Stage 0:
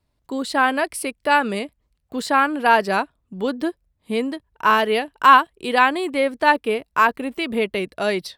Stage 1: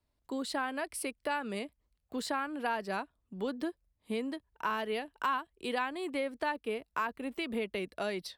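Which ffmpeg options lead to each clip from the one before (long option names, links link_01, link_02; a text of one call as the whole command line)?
ffmpeg -i in.wav -filter_complex "[0:a]equalizer=frequency=130:width=1.8:gain=-5,acrossover=split=170[link_01][link_02];[link_02]acompressor=threshold=-25dB:ratio=3[link_03];[link_01][link_03]amix=inputs=2:normalize=0,volume=-8dB" out.wav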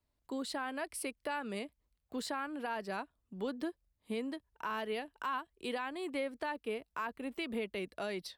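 ffmpeg -i in.wav -af "alimiter=level_in=0.5dB:limit=-24dB:level=0:latency=1:release=16,volume=-0.5dB,volume=-2.5dB" out.wav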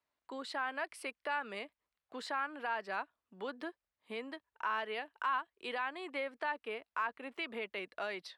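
ffmpeg -i in.wav -af "bandpass=frequency=1500:width_type=q:width=0.76:csg=0,volume=4dB" out.wav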